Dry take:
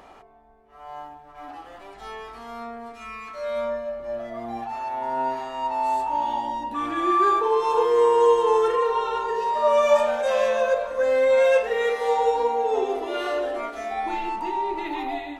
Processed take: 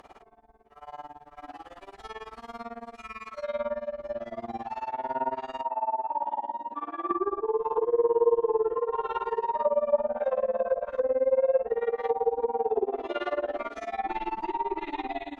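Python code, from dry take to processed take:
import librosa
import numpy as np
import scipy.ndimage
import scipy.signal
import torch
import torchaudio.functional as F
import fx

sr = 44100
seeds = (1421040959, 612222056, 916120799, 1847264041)

y = x * (1.0 - 0.95 / 2.0 + 0.95 / 2.0 * np.cos(2.0 * np.pi * 18.0 * (np.arange(len(x)) / sr)))
y = fx.bandpass_q(y, sr, hz=710.0, q=1.2, at=(5.61, 7.11))
y = fx.env_lowpass_down(y, sr, base_hz=630.0, full_db=-21.0)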